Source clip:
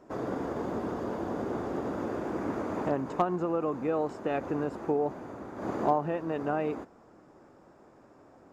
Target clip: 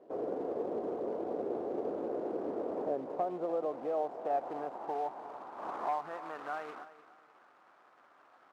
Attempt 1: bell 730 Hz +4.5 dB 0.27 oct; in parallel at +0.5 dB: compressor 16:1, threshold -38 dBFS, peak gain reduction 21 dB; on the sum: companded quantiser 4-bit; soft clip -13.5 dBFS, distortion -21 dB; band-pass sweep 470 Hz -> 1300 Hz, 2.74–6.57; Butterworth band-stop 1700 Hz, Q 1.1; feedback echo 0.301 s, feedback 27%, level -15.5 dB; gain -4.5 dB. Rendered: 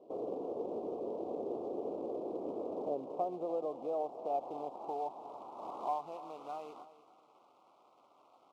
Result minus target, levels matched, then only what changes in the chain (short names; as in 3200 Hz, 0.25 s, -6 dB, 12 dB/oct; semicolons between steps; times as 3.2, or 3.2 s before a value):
2000 Hz band -15.5 dB; compressor: peak gain reduction +10 dB
change: compressor 16:1, threshold -27.5 dBFS, peak gain reduction 11 dB; remove: Butterworth band-stop 1700 Hz, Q 1.1